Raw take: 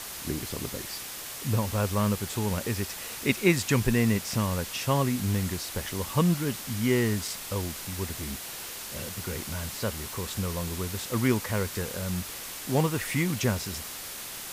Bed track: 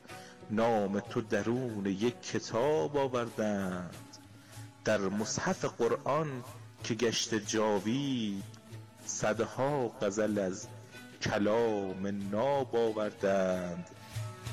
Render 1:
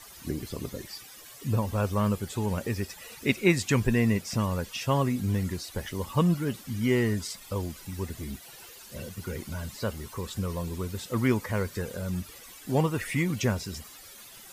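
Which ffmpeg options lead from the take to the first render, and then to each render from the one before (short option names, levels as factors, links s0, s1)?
-af "afftdn=nr=14:nf=-39"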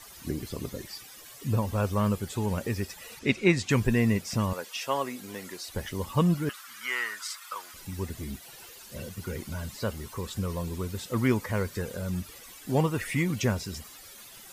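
-filter_complex "[0:a]asettb=1/sr,asplit=3[s0][s1][s2];[s0]atrim=end=3.194[s3];[s1]atrim=start=3.19:end=3.7,asetpts=PTS-STARTPTS,afade=t=in:d=0.004:c=qsin,afade=t=out:st=0.506:d=0.004:c=qsin,lowpass=6700[s4];[s2]atrim=start=3.696[s5];[s3][s4]acrossfade=d=0.004:c1=hsin:c2=qsin[s6];[s6][s5]acrossfade=d=0.004:c1=qsin:c2=hsin,asettb=1/sr,asplit=3[s7][s8][s9];[s7]atrim=end=4.534[s10];[s8]atrim=start=4.53:end=5.68,asetpts=PTS-STARTPTS,afade=t=in:d=0.004:c=qsin,afade=t=out:st=1.146:d=0.004:c=qsin,highpass=430[s11];[s9]atrim=start=5.676[s12];[s10][s11]acrossfade=d=0.004:c1=hsin:c2=qsin[s13];[s13][s12]acrossfade=d=0.004:c1=qsin:c2=hsin,asettb=1/sr,asplit=3[s14][s15][s16];[s14]atrim=end=6.494[s17];[s15]atrim=start=6.49:end=7.74,asetpts=PTS-STARTPTS,afade=t=in:d=0.004:c=qsin,afade=t=out:st=1.246:d=0.004:c=qsin,highpass=f=1300:t=q:w=3.6[s18];[s16]atrim=start=7.736[s19];[s17][s18]acrossfade=d=0.004:c1=hsin:c2=qsin[s20];[s20][s19]acrossfade=d=0.004:c1=qsin:c2=hsin"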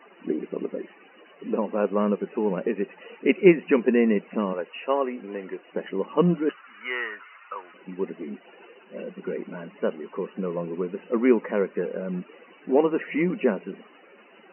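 -af "afftfilt=real='re*between(b*sr/4096,170,3000)':imag='im*between(b*sr/4096,170,3000)':win_size=4096:overlap=0.75,equalizer=f=410:w=1.1:g=10"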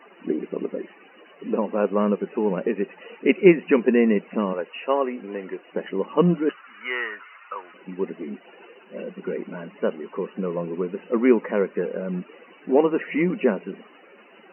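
-af "volume=1.26,alimiter=limit=0.794:level=0:latency=1"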